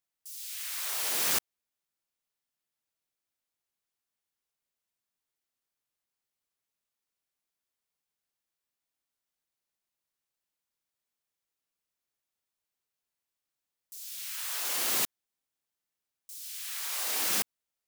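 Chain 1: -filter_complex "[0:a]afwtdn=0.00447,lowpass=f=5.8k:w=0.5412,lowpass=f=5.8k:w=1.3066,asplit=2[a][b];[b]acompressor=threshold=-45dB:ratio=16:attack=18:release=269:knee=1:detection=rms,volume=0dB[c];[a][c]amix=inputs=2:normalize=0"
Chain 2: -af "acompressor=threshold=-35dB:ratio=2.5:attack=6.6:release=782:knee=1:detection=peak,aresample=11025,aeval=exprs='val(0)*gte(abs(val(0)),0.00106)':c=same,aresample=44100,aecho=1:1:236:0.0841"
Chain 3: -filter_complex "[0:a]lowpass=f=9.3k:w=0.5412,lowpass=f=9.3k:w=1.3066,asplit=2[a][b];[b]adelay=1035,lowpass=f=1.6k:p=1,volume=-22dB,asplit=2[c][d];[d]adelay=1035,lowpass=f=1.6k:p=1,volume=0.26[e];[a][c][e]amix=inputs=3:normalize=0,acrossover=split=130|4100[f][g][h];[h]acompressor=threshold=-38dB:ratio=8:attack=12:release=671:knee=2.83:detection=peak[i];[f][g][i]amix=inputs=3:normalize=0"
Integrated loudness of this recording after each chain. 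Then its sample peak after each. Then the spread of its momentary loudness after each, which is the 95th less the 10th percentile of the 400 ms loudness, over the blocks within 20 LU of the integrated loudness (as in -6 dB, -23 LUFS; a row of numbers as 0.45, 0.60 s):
-34.5, -43.5, -36.5 LUFS; -19.5, -29.5, -22.0 dBFS; 11, 11, 14 LU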